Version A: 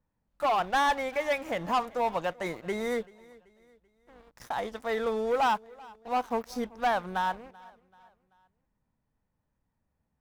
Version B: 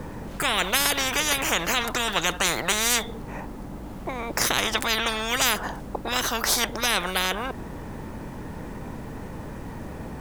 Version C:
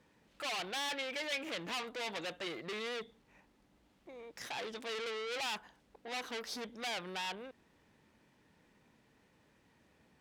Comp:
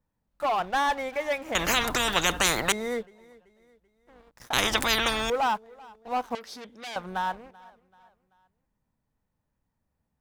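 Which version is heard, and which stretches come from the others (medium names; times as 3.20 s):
A
1.55–2.72 s: from B
4.53–5.30 s: from B
6.35–6.96 s: from C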